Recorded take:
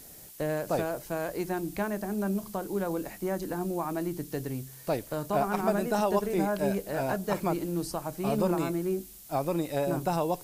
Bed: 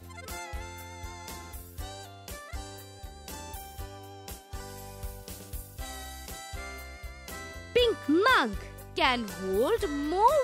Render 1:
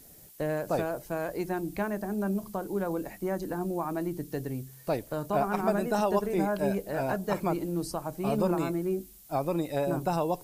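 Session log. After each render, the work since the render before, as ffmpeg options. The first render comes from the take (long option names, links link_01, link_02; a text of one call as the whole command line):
ffmpeg -i in.wav -af "afftdn=noise_reduction=6:noise_floor=-49" out.wav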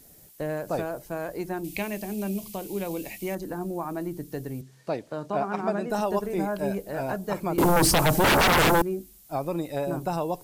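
ffmpeg -i in.wav -filter_complex "[0:a]asettb=1/sr,asplit=3[link_01][link_02][link_03];[link_01]atrim=end=1.644[link_04];[link_02]atrim=start=1.64:end=3.35,asetpts=PTS-STARTPTS,afade=type=in:duration=0.004:curve=qsin,afade=type=out:start_time=1.706:duration=0.004:curve=qsin,highshelf=frequency=1900:width_type=q:width=3:gain=8.5[link_05];[link_03]atrim=start=3.346[link_06];[link_04][link_05]acrossfade=duration=0.004:curve1=hsin:curve2=qsin[link_07];[link_07][link_06]acrossfade=duration=0.004:curve1=qsin:curve2=hsin,asettb=1/sr,asplit=3[link_08][link_09][link_10];[link_08]atrim=end=4.614[link_11];[link_09]atrim=start=4.61:end=5.9,asetpts=PTS-STARTPTS,afade=type=in:duration=0.004:curve=qsin,afade=type=out:start_time=1.286:duration=0.004:curve=qsin,highpass=140,lowpass=5800[link_12];[link_10]atrim=start=5.896[link_13];[link_11][link_12]acrossfade=duration=0.004:curve1=hsin:curve2=qsin[link_14];[link_14][link_13]acrossfade=duration=0.004:curve1=qsin:curve2=hsin,asettb=1/sr,asplit=3[link_15][link_16][link_17];[link_15]atrim=end=7.584[link_18];[link_16]atrim=start=7.58:end=8.82,asetpts=PTS-STARTPTS,afade=type=in:duration=0.004:curve=qsin,afade=type=out:start_time=1.236:duration=0.004:curve=qsin,aeval=exprs='0.158*sin(PI/2*7.08*val(0)/0.158)':channel_layout=same[link_19];[link_17]atrim=start=8.816[link_20];[link_18][link_19]acrossfade=duration=0.004:curve1=hsin:curve2=qsin[link_21];[link_21][link_20]acrossfade=duration=0.004:curve1=qsin:curve2=hsin" out.wav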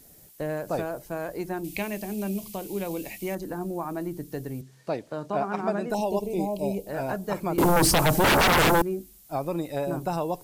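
ffmpeg -i in.wav -filter_complex "[0:a]asettb=1/sr,asplit=3[link_01][link_02][link_03];[link_01]atrim=end=5.944[link_04];[link_02]atrim=start=5.94:end=6.87,asetpts=PTS-STARTPTS,afade=type=in:duration=0.004:curve=qsin,afade=type=out:start_time=0.926:duration=0.004:curve=qsin,asuperstop=centerf=1500:order=8:qfactor=1.1[link_05];[link_03]atrim=start=6.866[link_06];[link_04][link_05]acrossfade=duration=0.004:curve1=hsin:curve2=qsin[link_07];[link_07][link_06]acrossfade=duration=0.004:curve1=qsin:curve2=hsin" out.wav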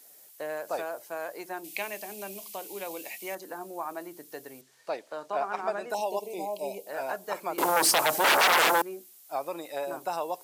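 ffmpeg -i in.wav -af "highpass=600" out.wav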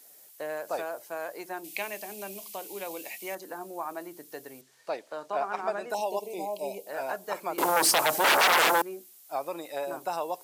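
ffmpeg -i in.wav -af anull out.wav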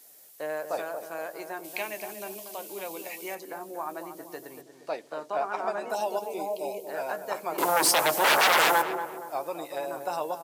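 ffmpeg -i in.wav -filter_complex "[0:a]asplit=2[link_01][link_02];[link_02]adelay=13,volume=-11dB[link_03];[link_01][link_03]amix=inputs=2:normalize=0,asplit=2[link_04][link_05];[link_05]adelay=235,lowpass=frequency=1100:poles=1,volume=-7.5dB,asplit=2[link_06][link_07];[link_07]adelay=235,lowpass=frequency=1100:poles=1,volume=0.51,asplit=2[link_08][link_09];[link_09]adelay=235,lowpass=frequency=1100:poles=1,volume=0.51,asplit=2[link_10][link_11];[link_11]adelay=235,lowpass=frequency=1100:poles=1,volume=0.51,asplit=2[link_12][link_13];[link_13]adelay=235,lowpass=frequency=1100:poles=1,volume=0.51,asplit=2[link_14][link_15];[link_15]adelay=235,lowpass=frequency=1100:poles=1,volume=0.51[link_16];[link_04][link_06][link_08][link_10][link_12][link_14][link_16]amix=inputs=7:normalize=0" out.wav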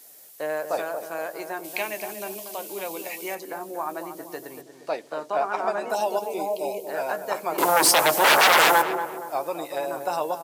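ffmpeg -i in.wav -af "volume=4.5dB" out.wav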